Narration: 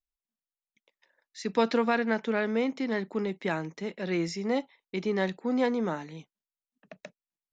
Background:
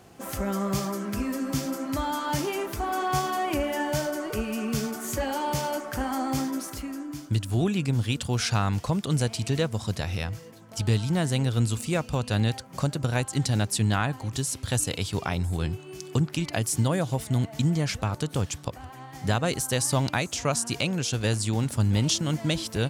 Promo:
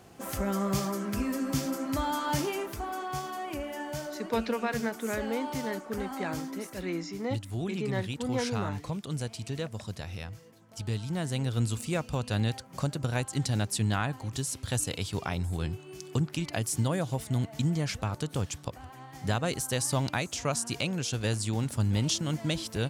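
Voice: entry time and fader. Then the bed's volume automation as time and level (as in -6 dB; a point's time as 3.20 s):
2.75 s, -5.0 dB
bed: 2.40 s -1.5 dB
3.09 s -9 dB
10.89 s -9 dB
11.63 s -4 dB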